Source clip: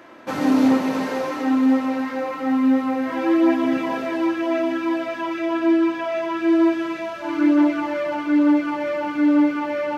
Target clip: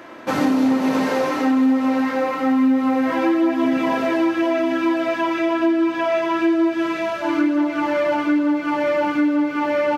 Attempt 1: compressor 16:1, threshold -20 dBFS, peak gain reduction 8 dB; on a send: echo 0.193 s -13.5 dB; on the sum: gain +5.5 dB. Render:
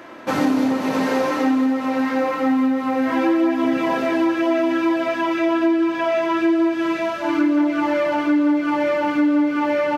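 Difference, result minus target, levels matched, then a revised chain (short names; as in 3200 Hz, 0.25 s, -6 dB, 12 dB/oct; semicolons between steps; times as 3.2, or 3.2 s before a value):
echo 86 ms late
compressor 16:1, threshold -20 dBFS, peak gain reduction 8 dB; on a send: echo 0.107 s -13.5 dB; on the sum: gain +5.5 dB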